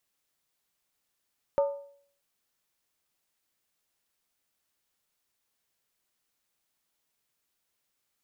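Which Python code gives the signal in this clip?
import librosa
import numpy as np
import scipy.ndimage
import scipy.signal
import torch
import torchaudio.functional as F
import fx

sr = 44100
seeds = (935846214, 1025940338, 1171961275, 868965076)

y = fx.strike_skin(sr, length_s=0.63, level_db=-19, hz=564.0, decay_s=0.57, tilt_db=10.0, modes=5)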